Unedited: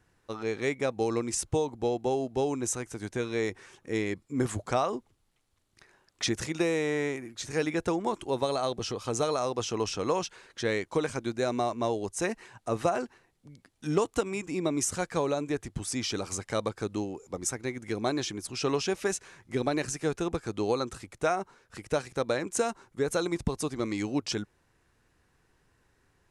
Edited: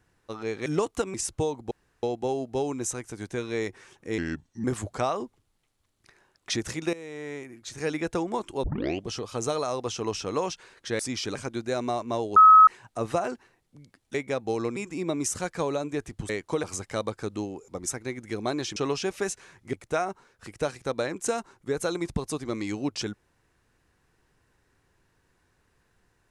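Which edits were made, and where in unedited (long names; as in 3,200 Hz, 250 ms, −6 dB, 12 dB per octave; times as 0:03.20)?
0:00.66–0:01.28: swap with 0:13.85–0:14.33
0:01.85: splice in room tone 0.32 s
0:04.00–0:04.37: play speed 80%
0:06.66–0:07.69: fade in, from −16.5 dB
0:08.36: tape start 0.45 s
0:10.72–0:11.06: swap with 0:15.86–0:16.22
0:12.07–0:12.38: beep over 1,280 Hz −9.5 dBFS
0:18.35–0:18.60: remove
0:19.57–0:21.04: remove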